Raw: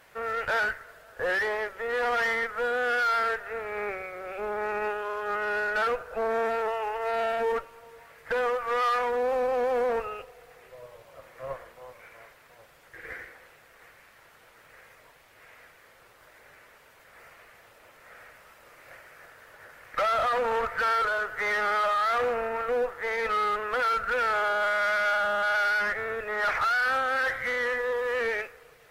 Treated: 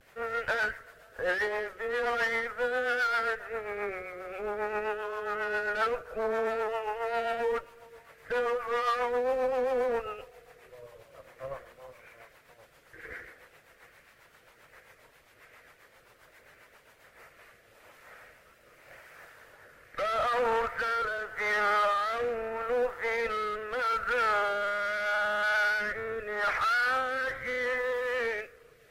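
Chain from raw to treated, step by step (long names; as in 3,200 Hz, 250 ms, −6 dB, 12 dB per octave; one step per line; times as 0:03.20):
pitch vibrato 0.44 Hz 31 cents
rotating-speaker cabinet horn 7.5 Hz, later 0.8 Hz, at 0:16.87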